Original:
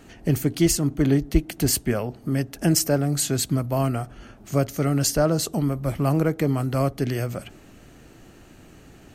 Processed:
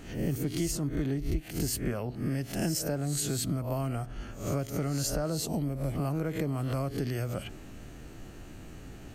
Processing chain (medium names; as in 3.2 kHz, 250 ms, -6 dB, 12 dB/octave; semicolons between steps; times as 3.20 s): reverse spectral sustain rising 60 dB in 0.43 s; bass shelf 100 Hz +8 dB; compression 6:1, threshold -26 dBFS, peak gain reduction 17.5 dB; 5.35–5.95 s: peaking EQ 1.2 kHz -8 dB 0.61 oct; trim -2 dB